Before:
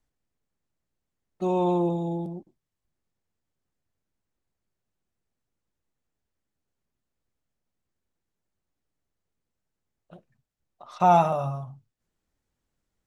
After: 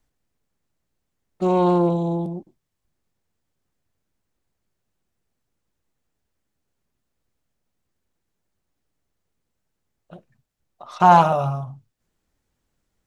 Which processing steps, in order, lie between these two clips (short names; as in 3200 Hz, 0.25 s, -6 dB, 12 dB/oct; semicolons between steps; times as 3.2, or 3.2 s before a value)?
Doppler distortion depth 0.19 ms; gain +6 dB